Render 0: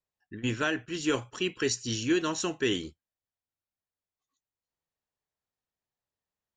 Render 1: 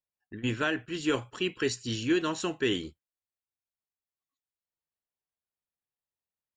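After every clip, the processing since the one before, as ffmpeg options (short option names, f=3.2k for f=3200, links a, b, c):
-af "agate=range=-8dB:threshold=-51dB:ratio=16:detection=peak,equalizer=f=6k:t=o:w=0.34:g=-10"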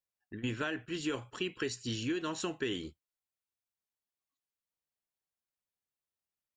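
-af "acompressor=threshold=-29dB:ratio=6,volume=-2dB"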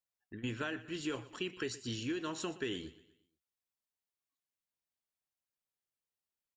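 -af "aecho=1:1:120|240|360|480:0.133|0.0573|0.0247|0.0106,volume=-3dB"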